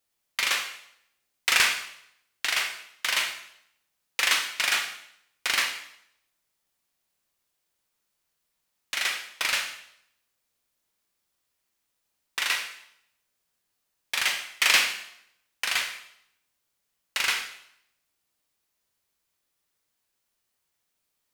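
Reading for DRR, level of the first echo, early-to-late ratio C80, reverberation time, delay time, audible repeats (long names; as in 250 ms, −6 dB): 4.0 dB, no echo audible, 11.0 dB, 0.75 s, no echo audible, no echo audible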